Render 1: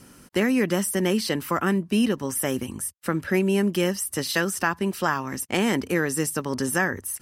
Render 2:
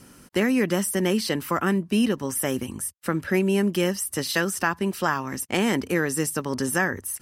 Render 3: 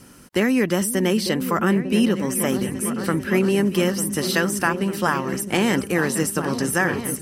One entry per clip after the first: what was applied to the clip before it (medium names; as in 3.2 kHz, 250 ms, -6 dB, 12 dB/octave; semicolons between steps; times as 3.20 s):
no audible change
delay with an opening low-pass 449 ms, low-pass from 200 Hz, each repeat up 2 oct, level -6 dB; trim +2.5 dB